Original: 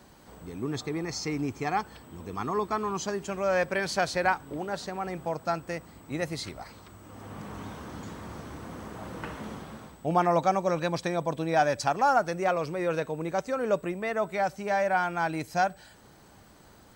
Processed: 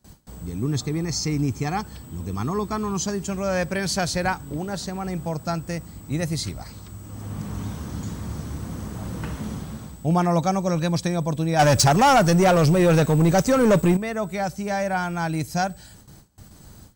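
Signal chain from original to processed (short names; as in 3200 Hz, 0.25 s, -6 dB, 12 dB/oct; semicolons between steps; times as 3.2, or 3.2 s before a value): gate with hold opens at -44 dBFS; tone controls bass +14 dB, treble +11 dB; 11.59–13.97 sample leveller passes 3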